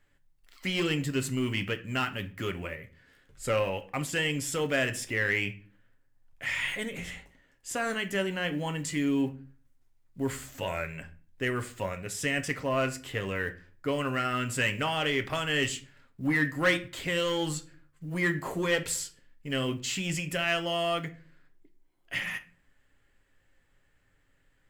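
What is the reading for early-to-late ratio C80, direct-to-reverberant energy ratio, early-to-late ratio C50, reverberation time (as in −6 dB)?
22.0 dB, 7.5 dB, 16.5 dB, 0.40 s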